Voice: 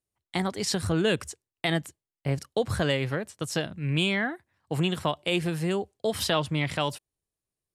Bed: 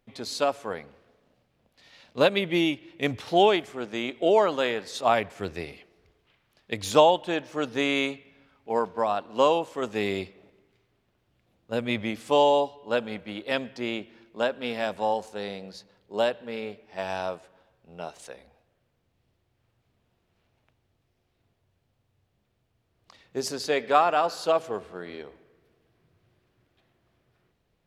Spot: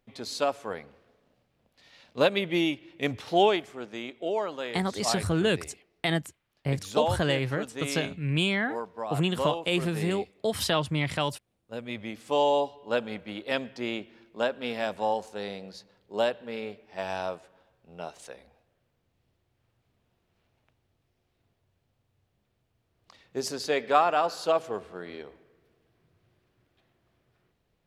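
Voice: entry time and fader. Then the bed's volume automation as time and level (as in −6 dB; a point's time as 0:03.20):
4.40 s, −0.5 dB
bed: 0:03.44 −2 dB
0:04.30 −9 dB
0:11.86 −9 dB
0:12.68 −1.5 dB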